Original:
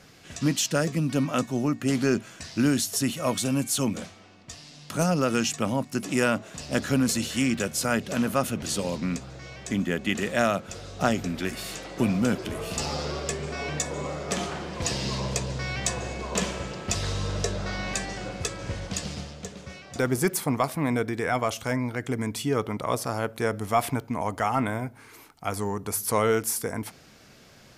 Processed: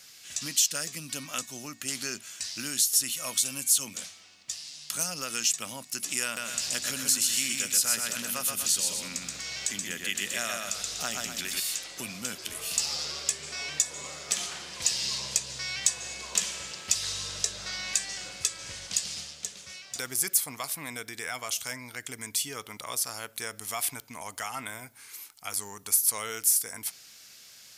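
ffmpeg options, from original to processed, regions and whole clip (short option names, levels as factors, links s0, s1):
-filter_complex "[0:a]asettb=1/sr,asplit=3[s0][s1][s2];[s0]atrim=end=6.244[s3];[s1]atrim=start=6.24:end=11.6,asetpts=PTS-STARTPTS,afade=t=in:d=0.004:c=qsin,afade=t=out:st=5.356:d=0.004:c=qsin,acompressor=mode=upward:threshold=0.0501:ratio=2.5:attack=3.2:release=140:knee=2.83:detection=peak,aecho=1:1:127|244:0.668|0.282,atrim=end_sample=236376[s4];[s2]atrim=start=11.596[s5];[s3][s4]acrossfade=d=0.004:c1=hsin:c2=qsin[s6];[s6][s5]acrossfade=d=0.004:c1=qsin:c2=hsin,highshelf=f=3500:g=12,acompressor=threshold=0.0501:ratio=1.5,tiltshelf=f=1100:g=-8.5,volume=0.355"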